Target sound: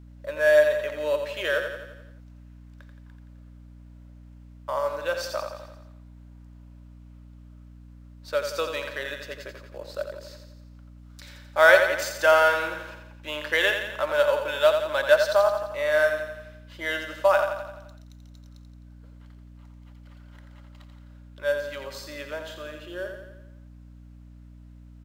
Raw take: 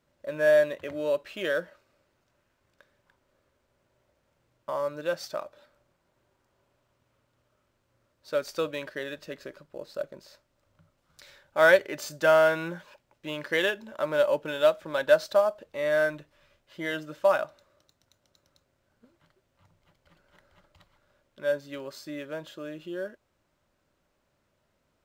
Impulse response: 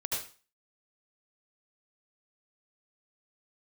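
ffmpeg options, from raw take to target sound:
-af "highpass=590,aecho=1:1:86|172|258|344|430|516|602:0.447|0.246|0.135|0.0743|0.0409|0.0225|0.0124,aeval=exprs='val(0)+0.00316*(sin(2*PI*60*n/s)+sin(2*PI*2*60*n/s)/2+sin(2*PI*3*60*n/s)/3+sin(2*PI*4*60*n/s)/4+sin(2*PI*5*60*n/s)/5)':c=same,volume=4.5dB"

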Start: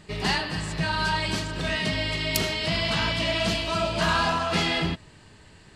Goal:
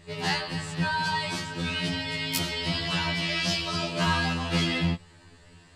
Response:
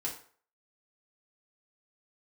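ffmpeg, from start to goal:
-filter_complex "[0:a]asettb=1/sr,asplit=3[a][b][c];[a]atrim=end=3.294[d];[b]atrim=start=3.29:end=3.88,asetpts=PTS-STARTPTS,afade=t=in:d=0.004:c=qsin,afade=t=out:st=0.586:d=0.004:c=qsin,equalizer=f=5.2k:t=o:w=0.46:g=8[e];[c]atrim=start=3.876[f];[d][e]acrossfade=d=0.004:c1=hsin:c2=qsin[g];[g][f]acrossfade=d=0.004:c1=qsin:c2=hsin,afftfilt=real='re*2*eq(mod(b,4),0)':imag='im*2*eq(mod(b,4),0)':win_size=2048:overlap=0.75"

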